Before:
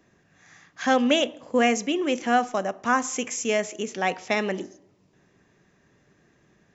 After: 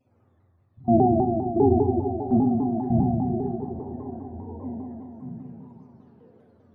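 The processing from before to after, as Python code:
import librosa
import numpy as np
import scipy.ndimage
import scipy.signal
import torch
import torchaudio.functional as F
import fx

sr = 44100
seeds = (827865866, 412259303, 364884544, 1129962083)

y = fx.octave_mirror(x, sr, pivot_hz=430.0)
y = fx.low_shelf(y, sr, hz=280.0, db=-5.0)
y = fx.level_steps(y, sr, step_db=23)
y = fx.phaser_stages(y, sr, stages=12, low_hz=350.0, high_hz=3600.0, hz=1.4, feedback_pct=35)
y = fx.echo_stepped(y, sr, ms=578, hz=3400.0, octaves=-1.4, feedback_pct=70, wet_db=-4.5)
y = fx.rev_fdn(y, sr, rt60_s=2.7, lf_ratio=1.0, hf_ratio=0.45, size_ms=25.0, drr_db=-6.5)
y = fx.vibrato_shape(y, sr, shape='saw_down', rate_hz=5.0, depth_cents=160.0)
y = y * 10.0 ** (-2.0 / 20.0)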